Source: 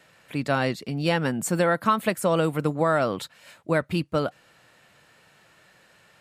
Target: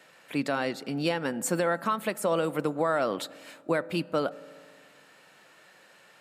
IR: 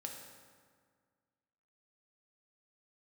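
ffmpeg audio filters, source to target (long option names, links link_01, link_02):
-filter_complex "[0:a]highpass=240,alimiter=limit=-17dB:level=0:latency=1:release=340,asplit=2[link_01][link_02];[1:a]atrim=start_sample=2205,highshelf=frequency=2300:gain=-11[link_03];[link_02][link_03]afir=irnorm=-1:irlink=0,volume=-9dB[link_04];[link_01][link_04]amix=inputs=2:normalize=0"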